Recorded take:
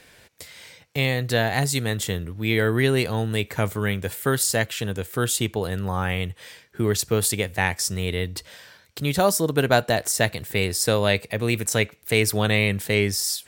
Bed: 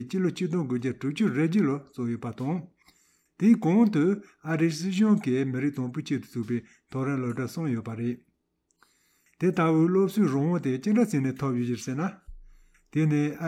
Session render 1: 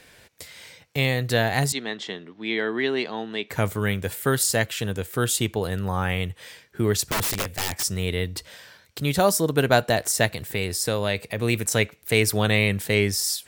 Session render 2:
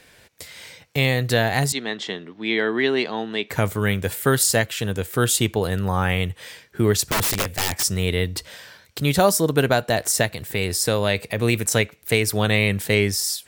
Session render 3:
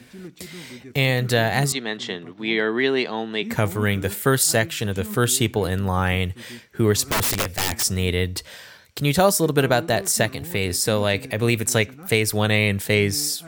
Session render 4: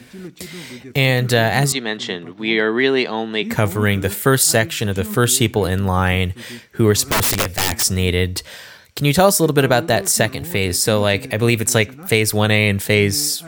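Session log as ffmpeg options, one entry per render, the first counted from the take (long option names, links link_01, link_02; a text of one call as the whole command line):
ffmpeg -i in.wav -filter_complex "[0:a]asettb=1/sr,asplit=3[link_01][link_02][link_03];[link_01]atrim=end=1.724[link_04];[link_02]atrim=start=1.72:end=3.5,asetpts=PTS-STARTPTS,afade=type=in:duration=0.004:curve=qsin,afade=type=out:start_time=1.776:duration=0.004:curve=qsin,highpass=frequency=240:width=0.5412,highpass=frequency=240:width=1.3066,equalizer=frequency=300:width_type=q:width=4:gain=-4,equalizer=frequency=510:width_type=q:width=4:gain=-9,equalizer=frequency=1400:width_type=q:width=4:gain=-5,equalizer=frequency=2500:width_type=q:width=4:gain=-4,equalizer=frequency=4500:width_type=q:width=4:gain=-3,lowpass=frequency=4800:width=0.5412,lowpass=frequency=4800:width=1.3066[link_05];[link_03]atrim=start=3.496[link_06];[link_04][link_05]acrossfade=duration=0.004:curve1=hsin:curve2=qsin[link_07];[link_07][link_06]acrossfade=duration=0.004:curve1=qsin:curve2=hsin,asplit=3[link_08][link_09][link_10];[link_08]afade=type=out:start_time=7.06:duration=0.02[link_11];[link_09]aeval=exprs='(mod(9.44*val(0)+1,2)-1)/9.44':channel_layout=same,afade=type=in:start_time=7.06:duration=0.02,afade=type=out:start_time=7.82:duration=0.02[link_12];[link_10]afade=type=in:start_time=7.82:duration=0.02[link_13];[link_11][link_12][link_13]amix=inputs=3:normalize=0,asplit=3[link_14][link_15][link_16];[link_14]afade=type=out:start_time=10.26:duration=0.02[link_17];[link_15]acompressor=threshold=-26dB:ratio=1.5:attack=3.2:release=140:knee=1:detection=peak,afade=type=in:start_time=10.26:duration=0.02,afade=type=out:start_time=11.37:duration=0.02[link_18];[link_16]afade=type=in:start_time=11.37:duration=0.02[link_19];[link_17][link_18][link_19]amix=inputs=3:normalize=0" out.wav
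ffmpeg -i in.wav -af "alimiter=limit=-9.5dB:level=0:latency=1:release=471,dynaudnorm=framelen=120:gausssize=7:maxgain=4dB" out.wav
ffmpeg -i in.wav -i bed.wav -filter_complex "[1:a]volume=-13dB[link_01];[0:a][link_01]amix=inputs=2:normalize=0" out.wav
ffmpeg -i in.wav -af "volume=4.5dB,alimiter=limit=-2dB:level=0:latency=1" out.wav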